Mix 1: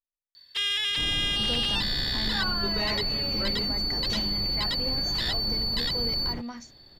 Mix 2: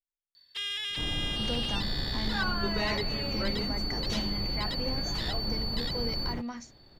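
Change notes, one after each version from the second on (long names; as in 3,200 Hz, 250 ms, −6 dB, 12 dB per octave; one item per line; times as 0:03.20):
first sound −7.0 dB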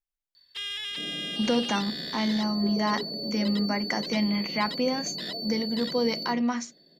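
speech +11.0 dB
second sound: add Chebyshev band-pass filter 160–680 Hz, order 4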